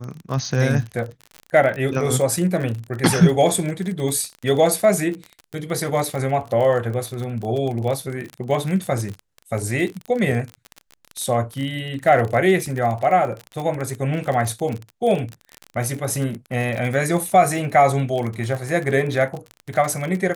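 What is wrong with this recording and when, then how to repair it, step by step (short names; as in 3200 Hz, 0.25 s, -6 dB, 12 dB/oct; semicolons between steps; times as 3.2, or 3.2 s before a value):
crackle 36/s -25 dBFS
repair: de-click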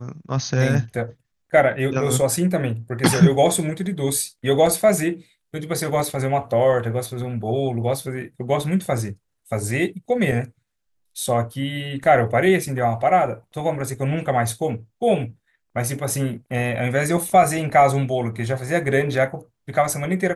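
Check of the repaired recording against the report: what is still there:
none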